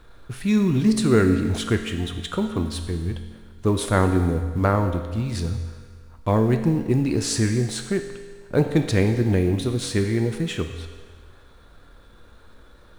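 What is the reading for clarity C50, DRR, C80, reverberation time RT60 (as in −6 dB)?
7.5 dB, 5.5 dB, 9.0 dB, 1.6 s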